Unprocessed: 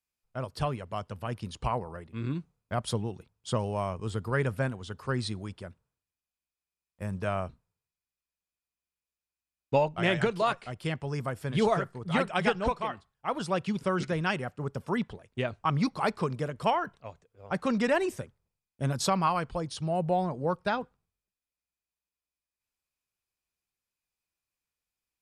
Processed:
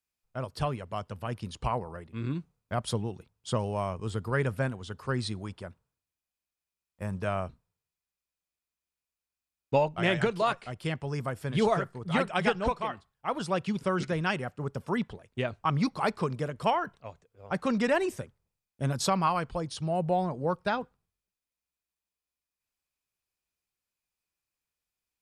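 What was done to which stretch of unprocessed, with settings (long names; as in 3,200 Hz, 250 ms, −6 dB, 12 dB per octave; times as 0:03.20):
0:05.40–0:07.18: dynamic equaliser 940 Hz, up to +4 dB, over −56 dBFS, Q 1.2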